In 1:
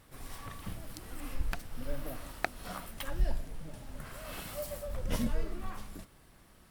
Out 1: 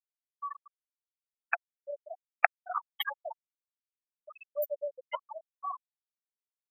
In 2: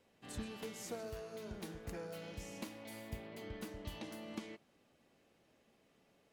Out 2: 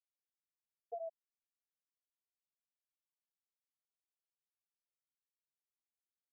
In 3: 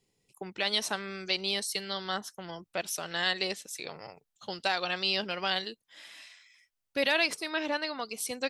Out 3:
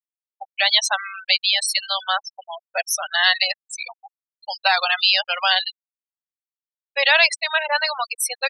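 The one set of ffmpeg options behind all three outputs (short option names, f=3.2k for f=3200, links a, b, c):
-filter_complex "[0:a]asplit=2[a][b];[b]volume=29.5dB,asoftclip=hard,volume=-29.5dB,volume=-5.5dB[c];[a][c]amix=inputs=2:normalize=0,acontrast=24,highpass=f=700:w=0.5412,highpass=f=700:w=1.3066,afftfilt=real='re*gte(hypot(re,im),0.0708)':imag='im*gte(hypot(re,im),0.0708)':win_size=1024:overlap=0.75,volume=6dB"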